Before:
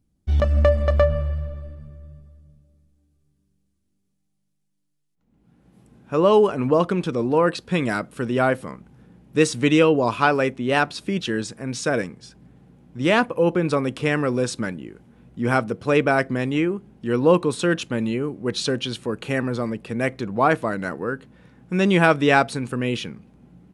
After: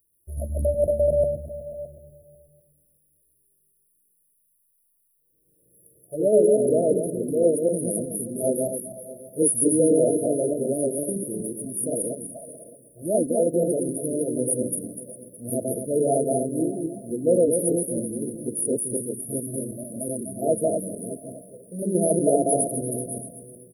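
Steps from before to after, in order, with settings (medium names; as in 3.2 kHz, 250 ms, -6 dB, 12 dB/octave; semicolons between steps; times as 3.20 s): backward echo that repeats 124 ms, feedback 55%, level 0 dB; RIAA curve recording; touch-sensitive flanger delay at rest 2.2 ms, full sweep at -14 dBFS; treble shelf 7.1 kHz +11 dB; delay 615 ms -18.5 dB; FFT band-reject 710–9400 Hz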